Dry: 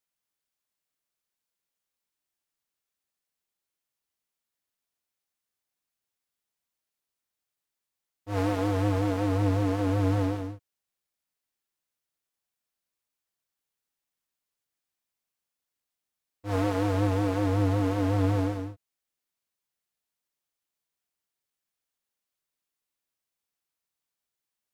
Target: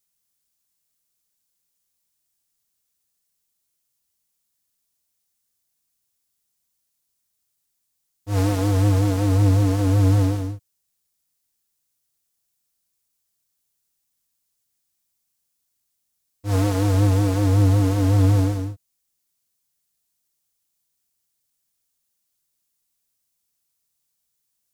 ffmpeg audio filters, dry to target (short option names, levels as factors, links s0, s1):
-af "bass=f=250:g=9,treble=f=4000:g=12,volume=1.19"